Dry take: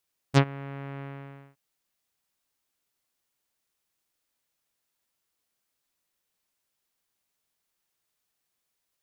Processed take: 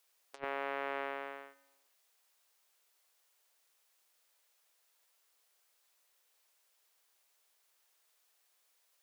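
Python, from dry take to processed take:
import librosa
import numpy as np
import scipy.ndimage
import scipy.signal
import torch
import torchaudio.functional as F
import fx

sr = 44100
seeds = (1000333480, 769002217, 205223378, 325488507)

y = scipy.signal.sosfilt(scipy.signal.butter(4, 430.0, 'highpass', fs=sr, output='sos'), x)
y = fx.over_compress(y, sr, threshold_db=-37.0, ratio=-0.5)
y = fx.echo_feedback(y, sr, ms=141, feedback_pct=48, wet_db=-21)
y = y * 10.0 ** (1.5 / 20.0)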